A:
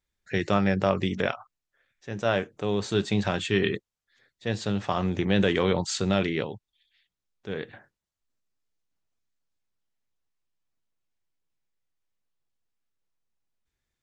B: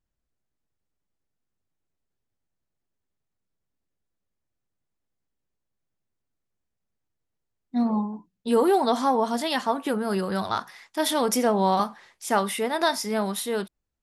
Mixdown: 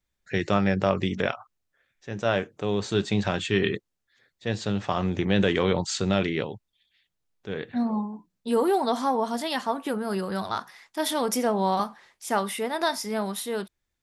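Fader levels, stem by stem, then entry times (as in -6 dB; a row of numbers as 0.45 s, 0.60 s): +0.5 dB, -2.5 dB; 0.00 s, 0.00 s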